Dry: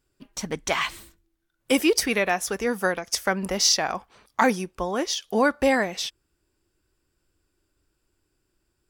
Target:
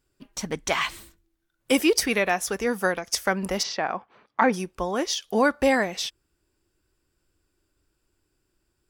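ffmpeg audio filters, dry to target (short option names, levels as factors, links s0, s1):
-filter_complex "[0:a]asplit=3[s0][s1][s2];[s0]afade=t=out:st=3.62:d=0.02[s3];[s1]highpass=150,lowpass=2400,afade=t=in:st=3.62:d=0.02,afade=t=out:st=4.52:d=0.02[s4];[s2]afade=t=in:st=4.52:d=0.02[s5];[s3][s4][s5]amix=inputs=3:normalize=0"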